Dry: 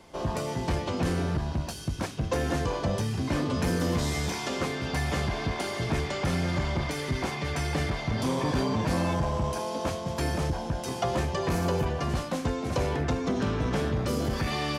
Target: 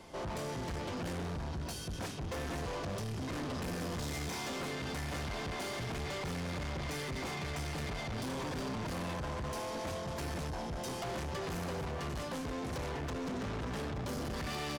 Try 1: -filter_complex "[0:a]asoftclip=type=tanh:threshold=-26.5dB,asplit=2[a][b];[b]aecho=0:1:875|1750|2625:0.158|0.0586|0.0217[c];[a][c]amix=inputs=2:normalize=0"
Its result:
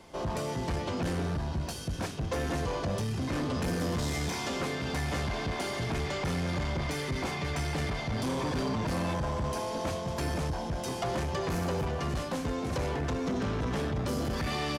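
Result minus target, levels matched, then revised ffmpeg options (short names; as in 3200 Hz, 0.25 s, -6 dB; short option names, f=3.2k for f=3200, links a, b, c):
soft clip: distortion -7 dB
-filter_complex "[0:a]asoftclip=type=tanh:threshold=-36.5dB,asplit=2[a][b];[b]aecho=0:1:875|1750|2625:0.158|0.0586|0.0217[c];[a][c]amix=inputs=2:normalize=0"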